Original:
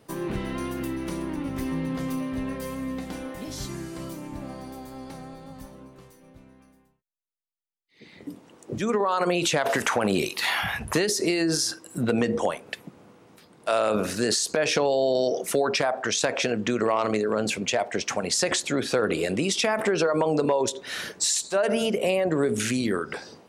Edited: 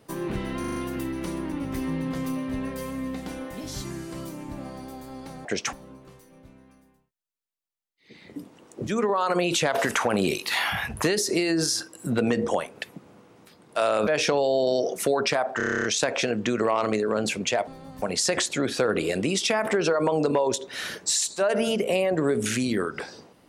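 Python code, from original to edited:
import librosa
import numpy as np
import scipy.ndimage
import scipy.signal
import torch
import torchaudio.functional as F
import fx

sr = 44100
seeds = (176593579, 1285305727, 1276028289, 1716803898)

y = fx.edit(x, sr, fx.stutter(start_s=0.6, slice_s=0.04, count=5),
    fx.swap(start_s=5.29, length_s=0.35, other_s=17.88, other_length_s=0.28),
    fx.cut(start_s=13.98, length_s=0.57),
    fx.stutter(start_s=16.05, slice_s=0.03, count=10), tone=tone)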